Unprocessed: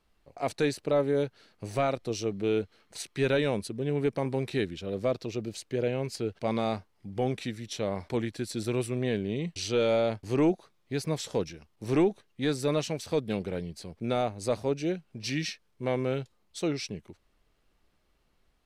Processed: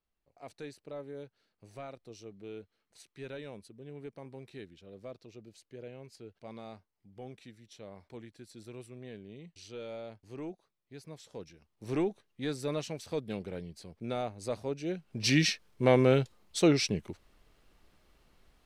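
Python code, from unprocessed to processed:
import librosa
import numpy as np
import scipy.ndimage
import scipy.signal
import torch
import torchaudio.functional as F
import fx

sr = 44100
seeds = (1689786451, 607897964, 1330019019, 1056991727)

y = fx.gain(x, sr, db=fx.line((11.25, -17.0), (11.9, -6.5), (14.84, -6.5), (15.26, 6.0)))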